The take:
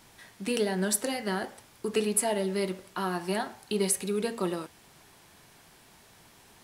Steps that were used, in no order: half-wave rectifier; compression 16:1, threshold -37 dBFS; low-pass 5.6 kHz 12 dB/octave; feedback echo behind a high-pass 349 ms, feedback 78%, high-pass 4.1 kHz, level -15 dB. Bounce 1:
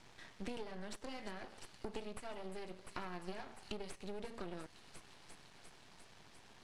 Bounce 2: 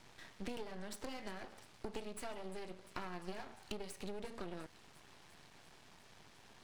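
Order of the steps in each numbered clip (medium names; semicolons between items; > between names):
feedback echo behind a high-pass > compression > half-wave rectifier > low-pass; low-pass > compression > feedback echo behind a high-pass > half-wave rectifier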